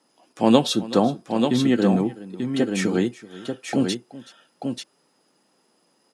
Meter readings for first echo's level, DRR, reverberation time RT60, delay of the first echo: −18.5 dB, no reverb audible, no reverb audible, 377 ms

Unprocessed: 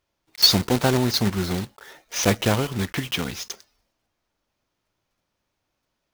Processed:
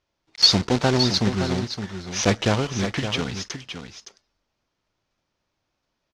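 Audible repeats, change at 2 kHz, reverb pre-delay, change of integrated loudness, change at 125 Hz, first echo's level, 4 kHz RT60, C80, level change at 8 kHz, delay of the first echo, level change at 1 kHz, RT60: 1, +0.5 dB, no reverb audible, 0.0 dB, +0.5 dB, −9.0 dB, no reverb audible, no reverb audible, −1.5 dB, 566 ms, +0.5 dB, no reverb audible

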